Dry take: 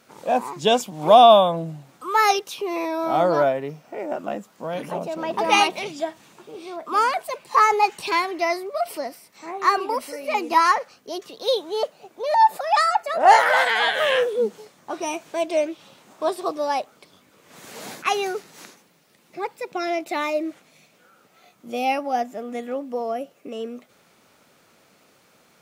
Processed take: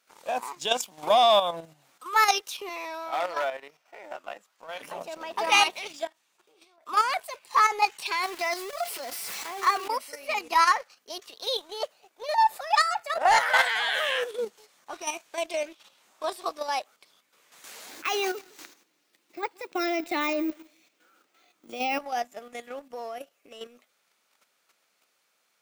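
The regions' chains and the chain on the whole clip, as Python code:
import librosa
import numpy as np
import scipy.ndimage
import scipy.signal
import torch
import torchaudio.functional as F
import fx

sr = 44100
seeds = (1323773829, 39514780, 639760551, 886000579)

y = fx.chain(x, sr, fx.high_shelf(hz=5800.0, db=-7.5),
    fx.overload_stage(gain_db=13.0),
    fx.highpass(hz=710.0, slope=6), at=(2.69, 4.81))
y = fx.chain(y, sr, fx.peak_eq(hz=190.0, db=-3.5, octaves=0.79),
    fx.level_steps(step_db=15), at=(6.07, 6.86))
y = fx.chain(y, sr, fx.zero_step(step_db=-29.0),
    fx.low_shelf(hz=240.0, db=7.0),
    fx.notch_comb(f0_hz=310.0), at=(8.23, 9.88))
y = fx.chain(y, sr, fx.peak_eq(hz=310.0, db=14.5, octaves=0.65),
    fx.echo_feedback(ms=162, feedback_pct=19, wet_db=-20),
    fx.resample_bad(factor=2, down='filtered', up='hold'), at=(17.89, 21.99))
y = fx.highpass(y, sr, hz=1500.0, slope=6)
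y = fx.leveller(y, sr, passes=1)
y = fx.level_steps(y, sr, step_db=9)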